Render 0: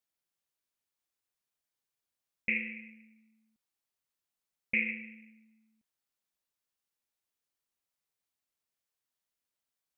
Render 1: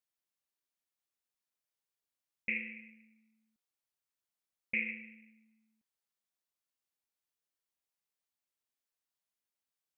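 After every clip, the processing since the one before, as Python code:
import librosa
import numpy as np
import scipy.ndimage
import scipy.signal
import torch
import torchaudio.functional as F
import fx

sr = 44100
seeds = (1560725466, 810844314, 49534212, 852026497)

y = fx.low_shelf(x, sr, hz=160.0, db=-4.0)
y = y * 10.0 ** (-4.0 / 20.0)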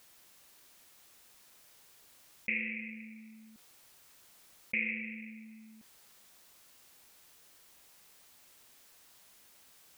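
y = fx.env_flatten(x, sr, amount_pct=50)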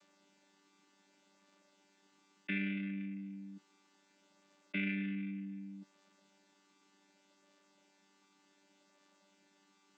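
y = fx.chord_vocoder(x, sr, chord='bare fifth', root=55)
y = y * 10.0 ** (1.0 / 20.0)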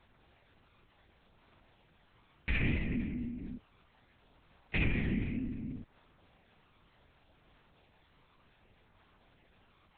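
y = x * np.sin(2.0 * np.pi * 47.0 * np.arange(len(x)) / sr)
y = fx.lpc_vocoder(y, sr, seeds[0], excitation='whisper', order=8)
y = y * 10.0 ** (9.0 / 20.0)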